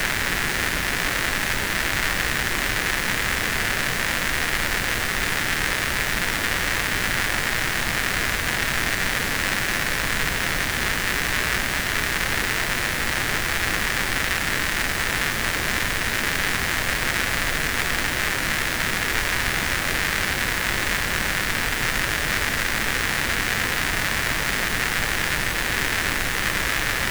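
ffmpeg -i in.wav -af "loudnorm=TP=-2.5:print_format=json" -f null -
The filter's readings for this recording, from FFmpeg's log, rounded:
"input_i" : "-22.0",
"input_tp" : "-5.1",
"input_lra" : "0.2",
"input_thresh" : "-32.0",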